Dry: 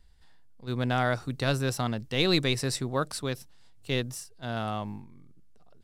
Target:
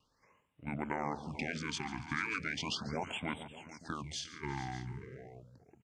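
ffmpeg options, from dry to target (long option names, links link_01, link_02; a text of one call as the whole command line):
ffmpeg -i in.wav -filter_complex "[0:a]afftfilt=real='re*lt(hypot(re,im),0.2)':imag='im*lt(hypot(re,im),0.2)':win_size=1024:overlap=0.75,highpass=220,bandreject=frequency=970:width=25,adynamicequalizer=threshold=0.002:dfrequency=570:dqfactor=4.1:tfrequency=570:tqfactor=4.1:attack=5:release=100:ratio=0.375:range=4:mode=cutabove:tftype=bell,acompressor=threshold=-34dB:ratio=3,asetrate=26222,aresample=44100,atempo=1.68179,asplit=2[link_01][link_02];[link_02]aecho=0:1:142|352|439|585:0.158|0.106|0.188|0.158[link_03];[link_01][link_03]amix=inputs=2:normalize=0,afftfilt=real='re*(1-between(b*sr/1024,490*pow(5600/490,0.5+0.5*sin(2*PI*0.37*pts/sr))/1.41,490*pow(5600/490,0.5+0.5*sin(2*PI*0.37*pts/sr))*1.41))':imag='im*(1-between(b*sr/1024,490*pow(5600/490,0.5+0.5*sin(2*PI*0.37*pts/sr))/1.41,490*pow(5600/490,0.5+0.5*sin(2*PI*0.37*pts/sr))*1.41))':win_size=1024:overlap=0.75,volume=1dB" out.wav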